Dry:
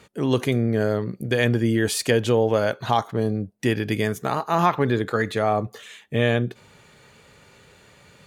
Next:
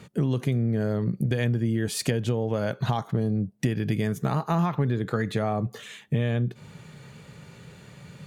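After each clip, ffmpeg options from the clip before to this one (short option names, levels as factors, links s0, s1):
-af "equalizer=f=150:t=o:w=1.2:g=14,acompressor=threshold=0.0794:ratio=6"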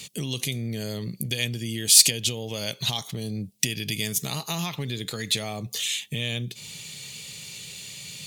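-filter_complex "[0:a]asplit=2[s0][s1];[s1]alimiter=limit=0.1:level=0:latency=1:release=265,volume=1.41[s2];[s0][s2]amix=inputs=2:normalize=0,aexciter=amount=9.9:drive=7.4:freq=2300,volume=0.237"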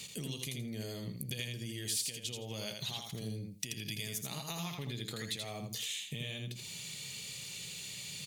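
-filter_complex "[0:a]acompressor=threshold=0.02:ratio=3,asplit=2[s0][s1];[s1]aecho=0:1:82|164|246:0.596|0.107|0.0193[s2];[s0][s2]amix=inputs=2:normalize=0,volume=0.531"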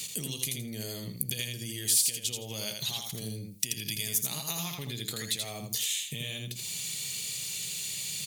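-af "crystalizer=i=2:c=0,volume=1.26"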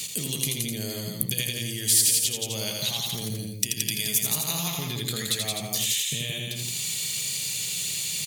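-af "aecho=1:1:172:0.668,volume=1.68"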